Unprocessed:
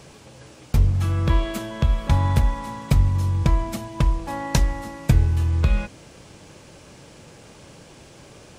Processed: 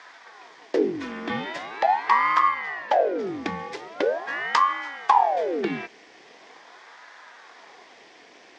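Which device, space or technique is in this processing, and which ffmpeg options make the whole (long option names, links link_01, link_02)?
voice changer toy: -filter_complex "[0:a]asettb=1/sr,asplit=3[link_01][link_02][link_03];[link_01]atrim=end=2.484[link_04];[link_02]atrim=start=2.48:end=3.27,asetpts=PTS-STARTPTS,afade=type=in:duration=0.004:curve=qsin,afade=type=out:start_time=0.786:duration=0.004:curve=qsin,highshelf=frequency=5600:gain=-11.5[link_05];[link_03]atrim=start=3.266[link_06];[link_04][link_05]acrossfade=duration=0.004:curve1=hsin:curve2=qsin[link_07];[link_07][link_06]acrossfade=duration=0.004:curve1=qsin:curve2=hsin,aeval=exprs='val(0)*sin(2*PI*640*n/s+640*0.8/0.42*sin(2*PI*0.42*n/s))':channel_layout=same,highpass=550,equalizer=frequency=580:width_type=q:width=4:gain=-8,equalizer=frequency=880:width_type=q:width=4:gain=-4,equalizer=frequency=1300:width_type=q:width=4:gain=-8,equalizer=frequency=1900:width_type=q:width=4:gain=5,equalizer=frequency=2800:width_type=q:width=4:gain=-5,equalizer=frequency=4100:width_type=q:width=4:gain=-5,lowpass=frequency=4900:width=0.5412,lowpass=frequency=4900:width=1.3066,volume=5.5dB"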